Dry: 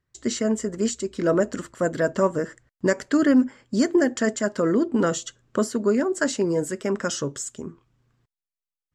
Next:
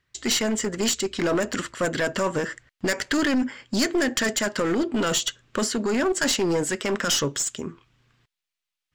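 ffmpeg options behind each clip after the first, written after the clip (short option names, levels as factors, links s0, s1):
-filter_complex "[0:a]equalizer=f=2900:t=o:w=2.3:g=12.5,acrossover=split=2800[s0][s1];[s0]alimiter=limit=0.158:level=0:latency=1:release=12[s2];[s2][s1]amix=inputs=2:normalize=0,aeval=exprs='clip(val(0),-1,0.075)':c=same,volume=1.19"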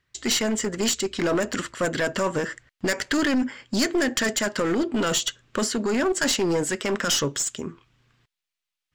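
-af anull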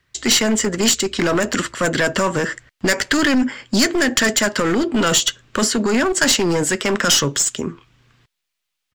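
-filter_complex "[0:a]acrossover=split=220|870|3200[s0][s1][s2][s3];[s1]alimiter=limit=0.0631:level=0:latency=1[s4];[s3]asplit=2[s5][s6];[s6]adelay=12,volume=0.237[s7];[s5][s7]amix=inputs=2:normalize=0[s8];[s0][s4][s2][s8]amix=inputs=4:normalize=0,volume=2.51"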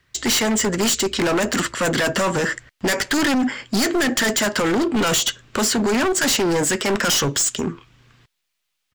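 -af "asoftclip=type=hard:threshold=0.112,volume=1.33"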